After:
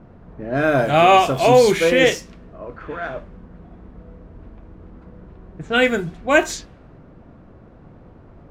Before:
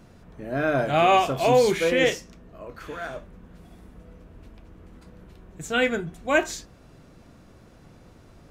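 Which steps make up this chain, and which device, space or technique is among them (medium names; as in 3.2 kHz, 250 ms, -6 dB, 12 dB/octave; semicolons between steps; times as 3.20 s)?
cassette deck with a dynamic noise filter (white noise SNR 33 dB; level-controlled noise filter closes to 1.1 kHz, open at -20.5 dBFS); trim +6 dB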